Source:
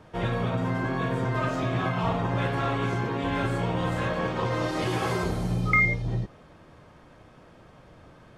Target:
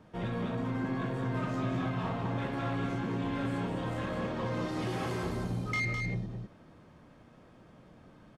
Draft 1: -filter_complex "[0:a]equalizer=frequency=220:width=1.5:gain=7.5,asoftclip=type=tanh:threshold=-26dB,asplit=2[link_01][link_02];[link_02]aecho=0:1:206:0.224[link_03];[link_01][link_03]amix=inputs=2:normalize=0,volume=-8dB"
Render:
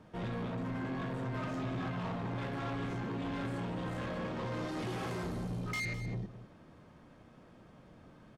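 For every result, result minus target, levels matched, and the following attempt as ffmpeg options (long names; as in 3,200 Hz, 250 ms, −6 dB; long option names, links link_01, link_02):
echo-to-direct −8 dB; soft clipping: distortion +7 dB
-filter_complex "[0:a]equalizer=frequency=220:width=1.5:gain=7.5,asoftclip=type=tanh:threshold=-26dB,asplit=2[link_01][link_02];[link_02]aecho=0:1:206:0.562[link_03];[link_01][link_03]amix=inputs=2:normalize=0,volume=-8dB"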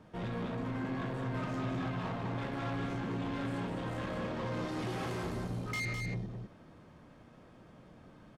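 soft clipping: distortion +7 dB
-filter_complex "[0:a]equalizer=frequency=220:width=1.5:gain=7.5,asoftclip=type=tanh:threshold=-19dB,asplit=2[link_01][link_02];[link_02]aecho=0:1:206:0.562[link_03];[link_01][link_03]amix=inputs=2:normalize=0,volume=-8dB"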